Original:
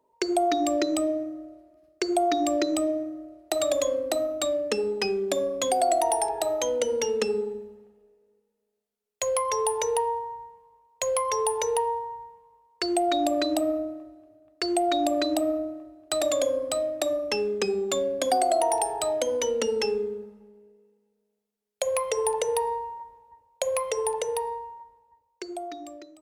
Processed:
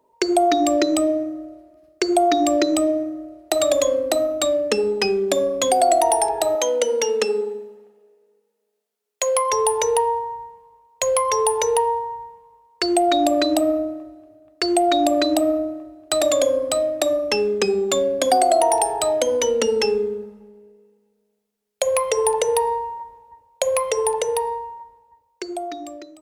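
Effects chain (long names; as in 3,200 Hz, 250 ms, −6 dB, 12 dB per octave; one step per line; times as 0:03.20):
0:06.55–0:09.53: high-pass filter 330 Hz 12 dB per octave
level +6.5 dB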